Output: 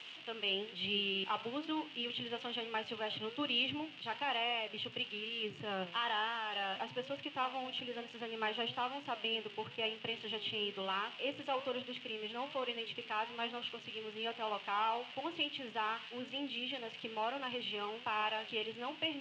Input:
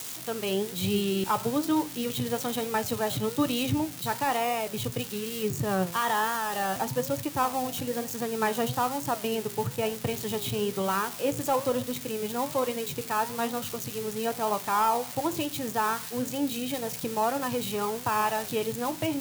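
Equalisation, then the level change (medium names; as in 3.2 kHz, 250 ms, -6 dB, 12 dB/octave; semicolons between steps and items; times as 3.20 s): high-pass 130 Hz; four-pole ladder low-pass 3.1 kHz, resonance 75%; bass shelf 170 Hz -11.5 dB; +1.0 dB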